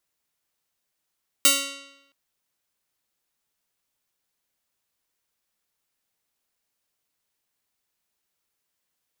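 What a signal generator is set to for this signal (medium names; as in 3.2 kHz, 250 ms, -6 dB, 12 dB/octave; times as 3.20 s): plucked string C#4, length 0.67 s, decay 0.91 s, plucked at 0.33, bright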